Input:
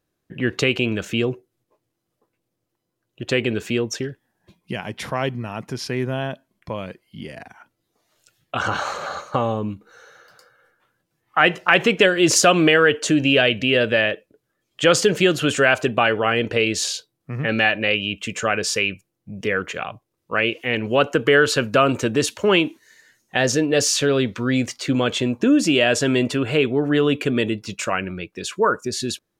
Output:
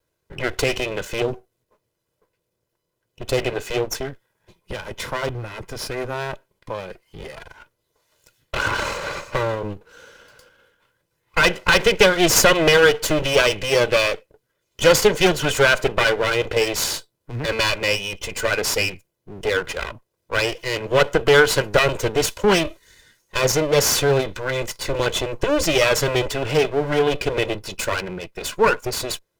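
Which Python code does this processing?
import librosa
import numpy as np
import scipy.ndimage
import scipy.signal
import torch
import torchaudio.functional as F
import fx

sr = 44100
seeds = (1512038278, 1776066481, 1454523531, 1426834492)

y = fx.lower_of_two(x, sr, delay_ms=2.0)
y = fx.dynamic_eq(y, sr, hz=2100.0, q=0.99, threshold_db=-44.0, ratio=4.0, max_db=-5, at=(1.22, 3.38))
y = F.gain(torch.from_numpy(y), 3.0).numpy()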